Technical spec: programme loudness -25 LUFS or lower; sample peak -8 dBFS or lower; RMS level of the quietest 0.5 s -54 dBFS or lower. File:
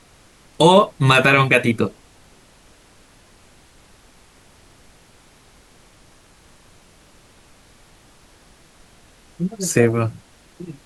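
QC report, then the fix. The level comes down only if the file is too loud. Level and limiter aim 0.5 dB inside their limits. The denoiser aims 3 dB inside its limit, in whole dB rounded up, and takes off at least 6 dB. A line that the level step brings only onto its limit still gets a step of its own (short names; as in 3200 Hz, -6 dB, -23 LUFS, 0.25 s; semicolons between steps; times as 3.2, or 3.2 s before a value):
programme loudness -16.5 LUFS: fail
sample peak -2.0 dBFS: fail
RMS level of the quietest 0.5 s -51 dBFS: fail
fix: gain -9 dB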